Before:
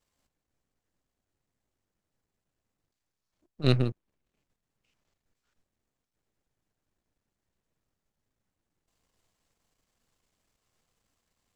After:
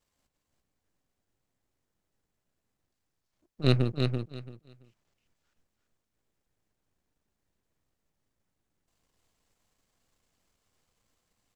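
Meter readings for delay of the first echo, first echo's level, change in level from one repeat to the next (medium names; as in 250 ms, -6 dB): 336 ms, -5.0 dB, -14.0 dB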